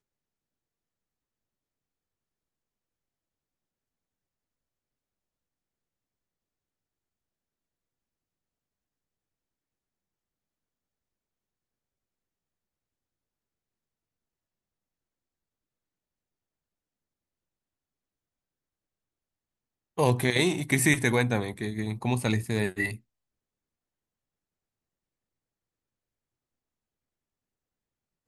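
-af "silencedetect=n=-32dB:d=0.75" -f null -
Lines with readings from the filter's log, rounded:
silence_start: 0.00
silence_end: 19.98 | silence_duration: 19.98
silence_start: 22.95
silence_end: 28.28 | silence_duration: 5.33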